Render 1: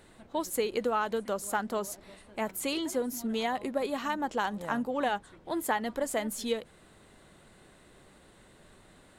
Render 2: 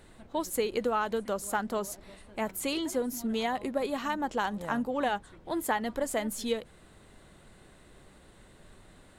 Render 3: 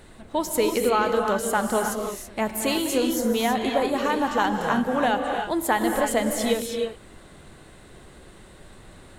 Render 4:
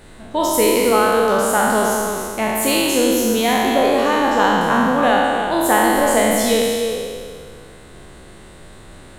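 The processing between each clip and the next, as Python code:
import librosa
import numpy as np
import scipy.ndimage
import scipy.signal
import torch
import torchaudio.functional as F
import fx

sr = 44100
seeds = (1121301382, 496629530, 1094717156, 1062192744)

y1 = fx.low_shelf(x, sr, hz=89.0, db=8.0)
y2 = fx.rev_gated(y1, sr, seeds[0], gate_ms=350, shape='rising', drr_db=3.0)
y2 = F.gain(torch.from_numpy(y2), 6.5).numpy()
y3 = fx.spec_trails(y2, sr, decay_s=1.97)
y3 = F.gain(torch.from_numpy(y3), 3.0).numpy()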